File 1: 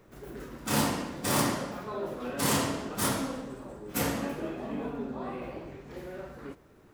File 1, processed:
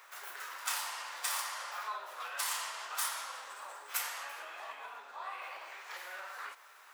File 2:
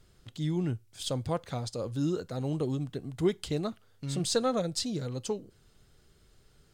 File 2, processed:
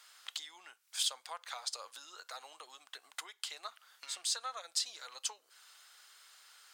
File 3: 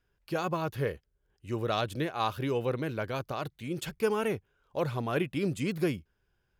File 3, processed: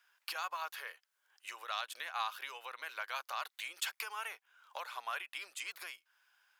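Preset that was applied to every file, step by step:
compressor 12:1, threshold -40 dBFS; HPF 950 Hz 24 dB/oct; gain +10.5 dB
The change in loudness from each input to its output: -7.5, -7.0, -9.0 LU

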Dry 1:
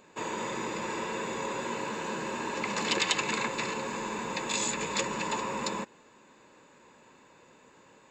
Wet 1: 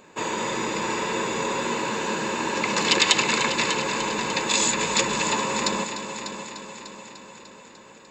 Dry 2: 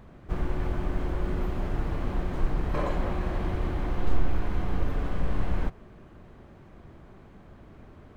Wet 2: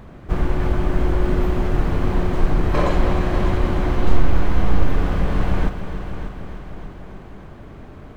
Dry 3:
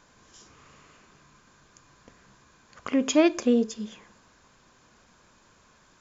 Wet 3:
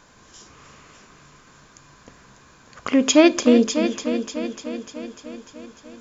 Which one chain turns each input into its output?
dynamic EQ 4700 Hz, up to +4 dB, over -48 dBFS, Q 0.78; on a send: multi-head echo 0.298 s, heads first and second, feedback 57%, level -12.5 dB; on the sum: normalise peaks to -1.5 dBFS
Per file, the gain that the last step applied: +6.5, +9.0, +6.5 dB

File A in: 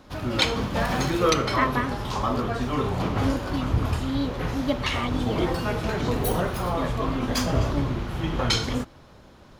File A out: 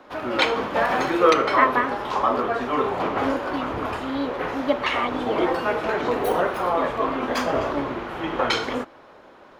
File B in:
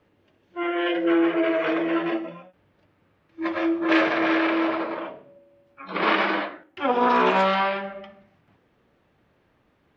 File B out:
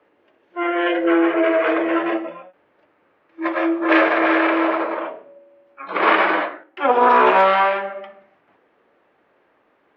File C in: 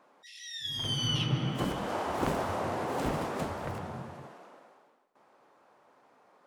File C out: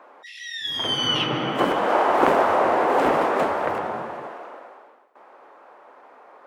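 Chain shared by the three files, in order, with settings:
three-band isolator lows -22 dB, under 300 Hz, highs -14 dB, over 2700 Hz; normalise peaks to -2 dBFS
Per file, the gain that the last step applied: +6.5, +7.0, +15.0 dB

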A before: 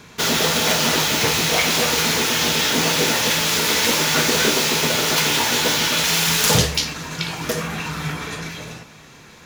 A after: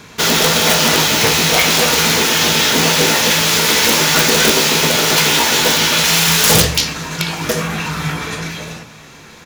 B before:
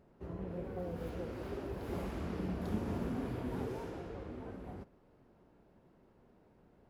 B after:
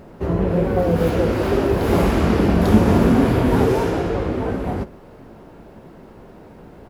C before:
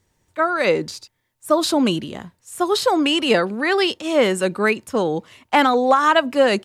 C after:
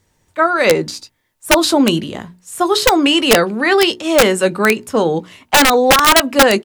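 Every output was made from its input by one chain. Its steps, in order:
notches 60/120/180/240/300/360/420 Hz; doubler 18 ms -13.5 dB; wrapped overs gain 7.5 dB; normalise peaks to -2 dBFS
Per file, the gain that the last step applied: +5.5, +23.5, +5.5 dB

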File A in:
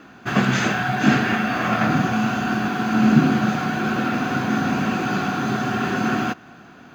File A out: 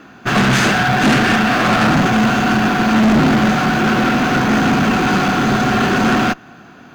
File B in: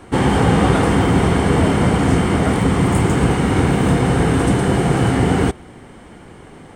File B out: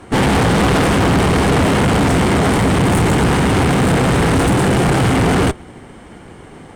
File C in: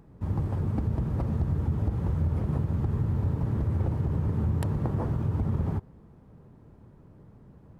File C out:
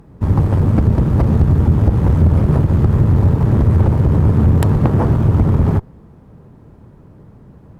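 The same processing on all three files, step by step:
tube stage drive 24 dB, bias 0.45; upward expander 1.5:1, over -42 dBFS; match loudness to -14 LUFS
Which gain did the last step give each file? +14.5, +12.5, +19.5 dB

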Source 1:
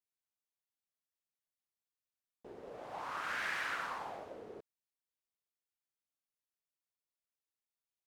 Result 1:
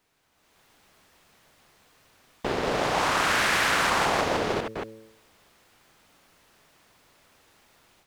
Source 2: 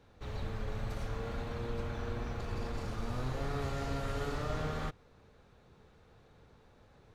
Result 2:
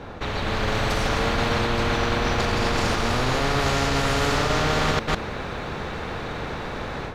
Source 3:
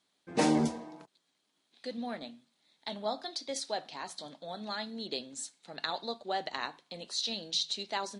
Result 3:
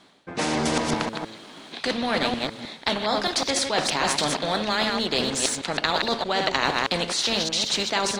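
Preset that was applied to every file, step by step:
reverse delay 0.156 s, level -8.5 dB; in parallel at -8 dB: crossover distortion -53.5 dBFS; on the sum: de-hum 110.6 Hz, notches 5; reverse; compressor 6:1, threshold -40 dBFS; reverse; LPF 1800 Hz 6 dB/oct; AGC gain up to 11 dB; spectral compressor 2:1; match loudness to -24 LUFS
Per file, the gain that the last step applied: +11.5, +10.5, +13.5 dB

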